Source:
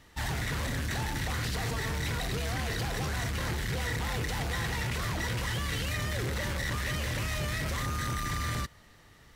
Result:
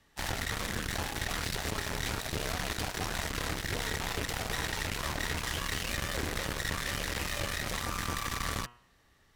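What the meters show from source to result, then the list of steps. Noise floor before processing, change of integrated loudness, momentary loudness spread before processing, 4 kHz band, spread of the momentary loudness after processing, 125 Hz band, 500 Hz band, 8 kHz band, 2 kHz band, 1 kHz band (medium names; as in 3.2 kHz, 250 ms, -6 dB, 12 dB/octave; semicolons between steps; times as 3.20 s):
-57 dBFS, -1.5 dB, 1 LU, +1.0 dB, 1 LU, -6.5 dB, -1.0 dB, +1.5 dB, -1.0 dB, -0.5 dB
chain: frequency shift -38 Hz; Chebyshev shaper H 7 -14 dB, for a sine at -19 dBFS; de-hum 120.2 Hz, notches 26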